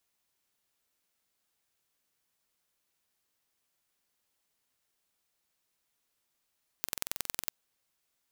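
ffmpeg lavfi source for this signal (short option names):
-f lavfi -i "aevalsrc='0.631*eq(mod(n,2023),0)*(0.5+0.5*eq(mod(n,4046),0))':d=0.65:s=44100"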